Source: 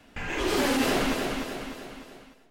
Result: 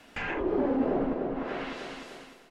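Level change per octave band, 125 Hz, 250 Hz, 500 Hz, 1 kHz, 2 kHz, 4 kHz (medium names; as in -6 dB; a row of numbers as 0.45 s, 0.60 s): -3.5 dB, -0.5 dB, 0.0 dB, -4.0 dB, -6.5 dB, -13.5 dB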